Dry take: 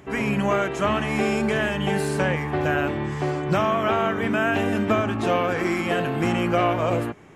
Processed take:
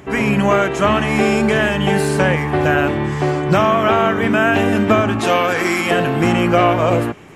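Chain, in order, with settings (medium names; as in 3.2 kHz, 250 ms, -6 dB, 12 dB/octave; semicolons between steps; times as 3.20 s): 5.19–5.91 s: tilt EQ +2 dB/octave; on a send: feedback echo behind a high-pass 264 ms, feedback 74%, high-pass 2.8 kHz, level -23.5 dB; on the sum: trim +7.5 dB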